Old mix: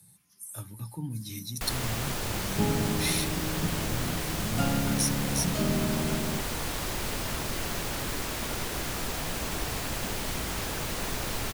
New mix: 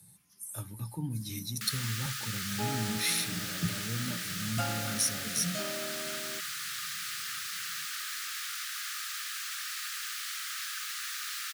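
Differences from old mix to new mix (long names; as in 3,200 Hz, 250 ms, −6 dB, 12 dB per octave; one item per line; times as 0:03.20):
first sound: add Chebyshev high-pass with heavy ripple 1,200 Hz, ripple 3 dB
second sound: add high-pass filter 640 Hz 12 dB per octave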